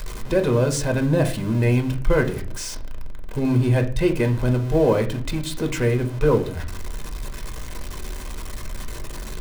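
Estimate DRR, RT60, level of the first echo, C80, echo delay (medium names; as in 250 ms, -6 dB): 4.0 dB, 0.40 s, no echo, 18.0 dB, no echo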